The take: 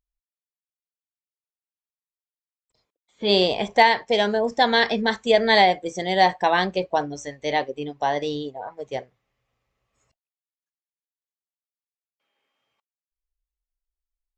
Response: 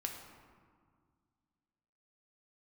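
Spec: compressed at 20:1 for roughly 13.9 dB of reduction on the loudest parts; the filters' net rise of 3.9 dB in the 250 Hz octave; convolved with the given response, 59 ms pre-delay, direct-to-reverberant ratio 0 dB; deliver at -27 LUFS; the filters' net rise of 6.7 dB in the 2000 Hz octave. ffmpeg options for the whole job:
-filter_complex "[0:a]equalizer=f=250:t=o:g=5,equalizer=f=2k:t=o:g=7.5,acompressor=threshold=-21dB:ratio=20,asplit=2[a][b];[1:a]atrim=start_sample=2205,adelay=59[c];[b][c]afir=irnorm=-1:irlink=0,volume=0dB[d];[a][d]amix=inputs=2:normalize=0,volume=-3dB"

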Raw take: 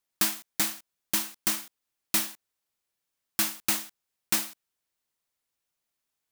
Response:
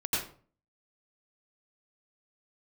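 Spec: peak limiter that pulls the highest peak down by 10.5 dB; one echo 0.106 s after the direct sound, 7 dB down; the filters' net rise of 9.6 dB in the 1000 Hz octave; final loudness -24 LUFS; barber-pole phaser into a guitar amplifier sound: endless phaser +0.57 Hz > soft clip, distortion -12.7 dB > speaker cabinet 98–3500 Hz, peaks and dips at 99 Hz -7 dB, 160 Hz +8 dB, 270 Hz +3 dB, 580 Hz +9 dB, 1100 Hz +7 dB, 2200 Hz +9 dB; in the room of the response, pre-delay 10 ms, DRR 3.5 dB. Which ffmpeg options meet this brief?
-filter_complex "[0:a]equalizer=f=1k:t=o:g=6,alimiter=limit=-20dB:level=0:latency=1,aecho=1:1:106:0.447,asplit=2[a][b];[1:a]atrim=start_sample=2205,adelay=10[c];[b][c]afir=irnorm=-1:irlink=0,volume=-11dB[d];[a][d]amix=inputs=2:normalize=0,asplit=2[e][f];[f]afreqshift=0.57[g];[e][g]amix=inputs=2:normalize=1,asoftclip=threshold=-32dB,highpass=98,equalizer=f=99:t=q:w=4:g=-7,equalizer=f=160:t=q:w=4:g=8,equalizer=f=270:t=q:w=4:g=3,equalizer=f=580:t=q:w=4:g=9,equalizer=f=1.1k:t=q:w=4:g=7,equalizer=f=2.2k:t=q:w=4:g=9,lowpass=f=3.5k:w=0.5412,lowpass=f=3.5k:w=1.3066,volume=17.5dB"

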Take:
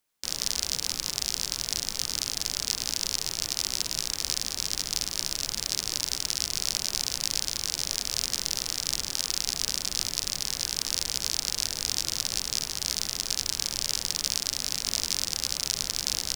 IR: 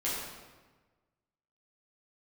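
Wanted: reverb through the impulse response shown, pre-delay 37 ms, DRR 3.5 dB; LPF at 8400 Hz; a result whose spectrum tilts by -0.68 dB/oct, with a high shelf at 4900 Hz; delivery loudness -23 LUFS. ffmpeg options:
-filter_complex "[0:a]lowpass=8.4k,highshelf=f=4.9k:g=-7.5,asplit=2[a][b];[1:a]atrim=start_sample=2205,adelay=37[c];[b][c]afir=irnorm=-1:irlink=0,volume=-10dB[d];[a][d]amix=inputs=2:normalize=0,volume=8dB"

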